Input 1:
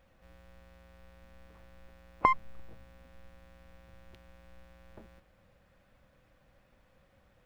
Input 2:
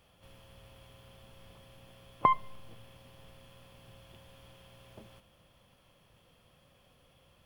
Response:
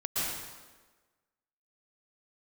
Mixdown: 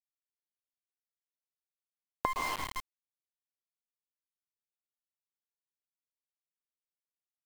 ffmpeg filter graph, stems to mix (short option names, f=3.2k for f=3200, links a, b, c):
-filter_complex "[0:a]equalizer=f=110:t=o:w=1.4:g=-14,volume=-3.5dB,asplit=2[a][b];[b]volume=-3.5dB[c];[1:a]acrusher=samples=16:mix=1:aa=0.000001,adelay=0.8,volume=-19dB[d];[2:a]atrim=start_sample=2205[e];[c][e]afir=irnorm=-1:irlink=0[f];[a][d][f]amix=inputs=3:normalize=0,aeval=exprs='val(0)*gte(abs(val(0)),0.0299)':c=same,acompressor=threshold=-28dB:ratio=10"